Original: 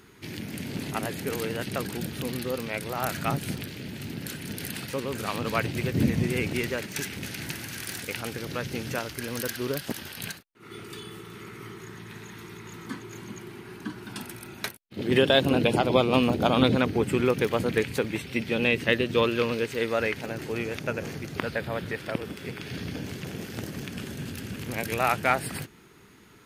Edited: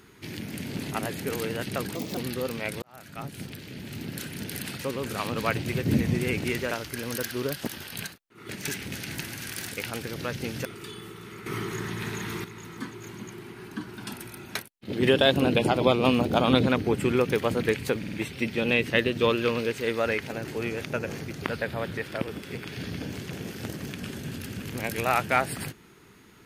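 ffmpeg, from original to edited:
-filter_complex "[0:a]asplit=12[a][b][c][d][e][f][g][h][i][j][k][l];[a]atrim=end=1.954[m];[b]atrim=start=1.95:end=2.26,asetpts=PTS-STARTPTS,asetrate=61740,aresample=44100[n];[c]atrim=start=2.256:end=2.91,asetpts=PTS-STARTPTS,afade=t=out:st=0.65:d=0.004:c=hsin[o];[d]atrim=start=2.91:end=6.802,asetpts=PTS-STARTPTS,afade=t=in:d=1.23[p];[e]atrim=start=8.958:end=10.742[q];[f]atrim=start=6.798:end=8.962[r];[g]atrim=start=10.738:end=11.552[s];[h]atrim=start=11.548:end=12.532,asetpts=PTS-STARTPTS,volume=9.5dB[t];[i]atrim=start=12.528:end=18.122[u];[j]atrim=start=18.068:end=18.122[v];[k]atrim=start=18.068:end=18.122[w];[l]atrim=start=18.068[x];[m][n]acrossfade=d=0.004:c1=hsin:c2=hsin[y];[o][p]concat=n=2:v=0:a=1[z];[y][z]acrossfade=d=0.004:c1=hsin:c2=hsin[aa];[aa][q]acrossfade=d=0.004:c1=hsin:c2=hsin[ab];[ab][r]acrossfade=d=0.004:c1=hsin:c2=hsin[ac];[ac][s]acrossfade=d=0.004:c1=hsin:c2=hsin[ad];[ad][t]acrossfade=d=0.004:c1=hsin:c2=hsin[ae];[ae][u]acrossfade=d=0.004:c1=hsin:c2=hsin[af];[af][v]acrossfade=d=0.004:c1=hsin:c2=hsin[ag];[ag][w]acrossfade=d=0.004:c1=hsin:c2=hsin[ah];[ah][x]acrossfade=d=0.004:c1=hsin:c2=hsin"

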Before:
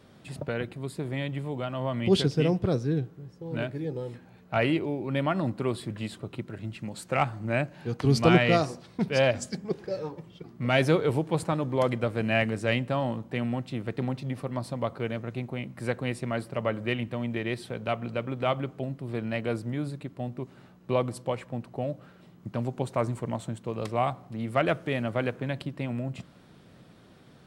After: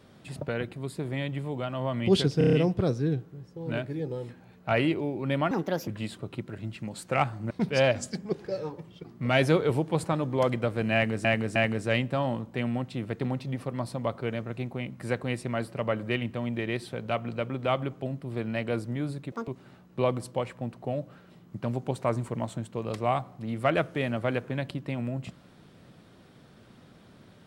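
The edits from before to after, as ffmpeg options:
-filter_complex "[0:a]asplit=13[a][b][c][d][e][f][g][h][i][j][k][l][m];[a]atrim=end=2.412[n];[b]atrim=start=2.378:end=2.412[o];[c]atrim=start=2.378:end=2.412[p];[d]atrim=start=2.378:end=2.412[q];[e]atrim=start=2.378:end=2.412[r];[f]atrim=start=2.378:end=5.364[s];[g]atrim=start=5.36:end=5.88,asetpts=PTS-STARTPTS,asetrate=62622,aresample=44100,atrim=end_sample=16149,asetpts=PTS-STARTPTS[t];[h]atrim=start=5.876:end=7.512[u];[i]atrim=start=8.898:end=12.642[v];[j]atrim=start=12.328:end=12.642[w];[k]atrim=start=12.328:end=20.094[x];[l]atrim=start=20.09:end=20.39,asetpts=PTS-STARTPTS,asetrate=82467,aresample=44100[y];[m]atrim=start=20.386[z];[n][o]acrossfade=d=0.004:c1=hsin:c2=hsin[aa];[aa][p]acrossfade=d=0.004:c1=hsin:c2=hsin[ab];[ab][q]acrossfade=d=0.004:c1=hsin:c2=hsin[ac];[ac][r]acrossfade=d=0.004:c1=hsin:c2=hsin[ad];[ad][s]acrossfade=d=0.004:c1=hsin:c2=hsin[ae];[ae][t]acrossfade=d=0.004:c1=hsin:c2=hsin[af];[af][u]acrossfade=d=0.004:c1=hsin:c2=hsin[ag];[ag][v]acrossfade=d=0.004:c1=hsin:c2=hsin[ah];[ah][w]acrossfade=d=0.004:c1=hsin:c2=hsin[ai];[ai][x]acrossfade=d=0.004:c1=hsin:c2=hsin[aj];[aj][y]acrossfade=d=0.004:c1=hsin:c2=hsin[ak];[ak][z]acrossfade=d=0.004:c1=hsin:c2=hsin"

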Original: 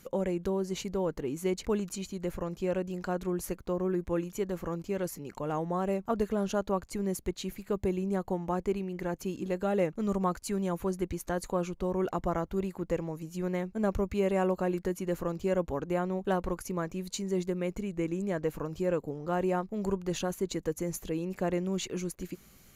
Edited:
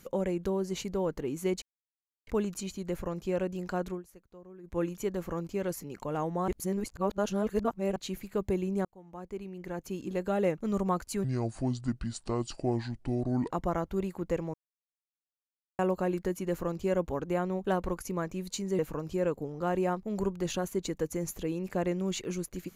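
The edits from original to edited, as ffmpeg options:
-filter_complex "[0:a]asplit=12[a][b][c][d][e][f][g][h][i][j][k][l];[a]atrim=end=1.62,asetpts=PTS-STARTPTS,afade=t=out:st=1.616:d=0.004:c=hsin,apad=pad_dur=0.65[m];[b]atrim=start=1.62:end=3.38,asetpts=PTS-STARTPTS,afade=t=in:d=0.004:c=hsin,afade=t=out:st=1.6:d=0.16:silence=0.105925[n];[c]atrim=start=3.38:end=3.98,asetpts=PTS-STARTPTS,volume=-19.5dB[o];[d]atrim=start=3.98:end=5.832,asetpts=PTS-STARTPTS,afade=t=in:d=0.16:silence=0.105925[p];[e]atrim=start=5.828:end=7.312,asetpts=PTS-STARTPTS,areverse[q];[f]atrim=start=7.308:end=8.2,asetpts=PTS-STARTPTS,afade=t=out:st=0.888:d=0.004:c=hsin[r];[g]atrim=start=8.2:end=10.594,asetpts=PTS-STARTPTS,afade=t=in:d=1.4[s];[h]atrim=start=10.59:end=12.11,asetpts=PTS-STARTPTS,asetrate=29547,aresample=44100[t];[i]atrim=start=12.106:end=13.14,asetpts=PTS-STARTPTS,afade=t=out:st=1.03:d=0.004:c=hsin[u];[j]atrim=start=13.14:end=14.39,asetpts=PTS-STARTPTS,volume=0[v];[k]atrim=start=14.39:end=17.392,asetpts=PTS-STARTPTS,afade=t=in:d=0.004:c=hsin[w];[l]atrim=start=18.448[x];[m][n][o][p]concat=n=4:v=0:a=1[y];[y][q]acrossfade=d=0.004:c1=hsin:c2=hsin[z];[r][s]concat=n=2:v=0:a=1[aa];[z][aa]acrossfade=d=0.004:c1=hsin:c2=hsin[ab];[ab][t]acrossfade=d=0.004:c1=hsin:c2=hsin[ac];[u][v][w]concat=n=3:v=0:a=1[ad];[ac][ad]acrossfade=d=0.004:c1=hsin:c2=hsin[ae];[ae][x]acrossfade=d=0.004:c1=hsin:c2=hsin"

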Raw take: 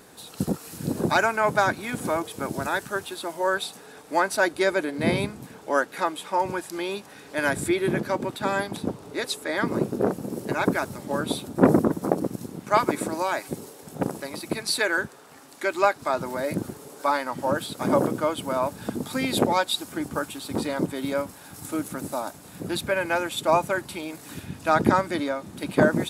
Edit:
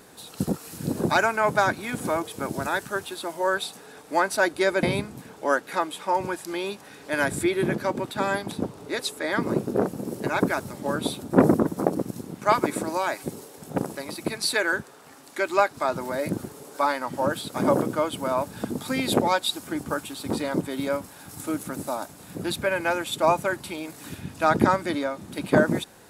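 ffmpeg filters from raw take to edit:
-filter_complex "[0:a]asplit=2[a][b];[a]atrim=end=4.832[c];[b]atrim=start=5.078[d];[c][d]acrossfade=d=0.004:c1=hsin:c2=hsin"

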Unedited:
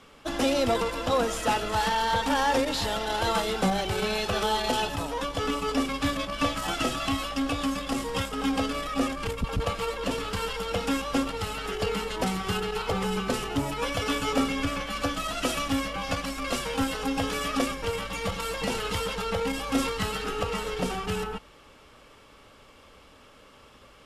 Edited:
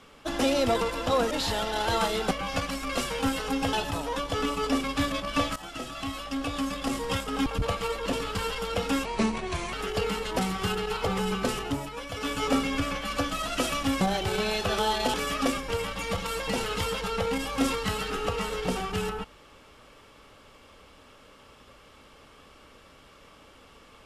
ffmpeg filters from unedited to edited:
-filter_complex "[0:a]asplit=12[a][b][c][d][e][f][g][h][i][j][k][l];[a]atrim=end=1.312[m];[b]atrim=start=2.648:end=3.652[n];[c]atrim=start=15.858:end=17.282[o];[d]atrim=start=4.778:end=6.61,asetpts=PTS-STARTPTS,afade=t=out:st=1.828:d=0.004:c=hsin:silence=0.211349[p];[e]atrim=start=6.61:end=8.512,asetpts=PTS-STARTPTS,afade=t=in:d=1.4:silence=0.211349[q];[f]atrim=start=9.438:end=11.034[r];[g]atrim=start=11.03:end=11.58,asetpts=PTS-STARTPTS,asetrate=35721,aresample=44100,atrim=end_sample=29944,asetpts=PTS-STARTPTS[s];[h]atrim=start=11.576:end=13.81,asetpts=PTS-STARTPTS,afade=t=out:st=1.844:d=0.39:silence=0.375837[t];[i]atrim=start=13.81:end=13.94,asetpts=PTS-STARTPTS,volume=-8.5dB[u];[j]atrim=start=13.94:end=15.862,asetpts=PTS-STARTPTS,afade=t=in:d=0.39:silence=0.375837[v];[k]atrim=start=3.648:end=4.782[w];[l]atrim=start=17.278[x];[m][n]acrossfade=d=0.004:c1=hsin:c2=hsin[y];[y][o]acrossfade=d=0.004:c1=hsin:c2=hsin[z];[p][q]concat=n=2:v=0:a=1[aa];[z][aa]acrossfade=d=0.004:c1=hsin:c2=hsin[ab];[ab][r]acrossfade=d=0.004:c1=hsin:c2=hsin[ac];[ac][s]acrossfade=d=0.004:c1=hsin:c2=hsin[ad];[t][u][v]concat=n=3:v=0:a=1[ae];[ad][ae]acrossfade=d=0.004:c1=hsin:c2=hsin[af];[af][w]acrossfade=d=0.004:c1=hsin:c2=hsin[ag];[ag][x]acrossfade=d=0.004:c1=hsin:c2=hsin"

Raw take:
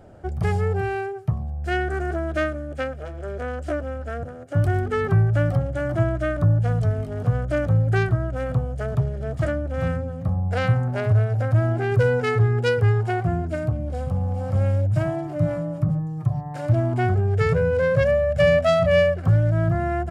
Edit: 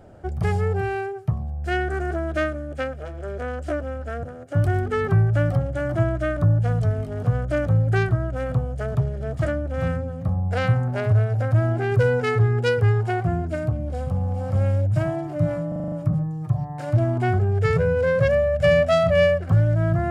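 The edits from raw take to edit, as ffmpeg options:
-filter_complex "[0:a]asplit=7[a][b][c][d][e][f][g];[a]atrim=end=15.722[h];[b]atrim=start=15.678:end=15.722[i];[c]atrim=start=15.678:end=15.722[j];[d]atrim=start=15.678:end=15.722[k];[e]atrim=start=15.678:end=15.722[l];[f]atrim=start=15.678:end=15.722[m];[g]atrim=start=15.678[n];[h][i]acrossfade=d=0.004:c1=hsin:c2=hsin[o];[o][j]acrossfade=d=0.004:c1=hsin:c2=hsin[p];[p][k]acrossfade=d=0.004:c1=hsin:c2=hsin[q];[q][l]acrossfade=d=0.004:c1=hsin:c2=hsin[r];[r][m]acrossfade=d=0.004:c1=hsin:c2=hsin[s];[s][n]acrossfade=d=0.004:c1=hsin:c2=hsin"

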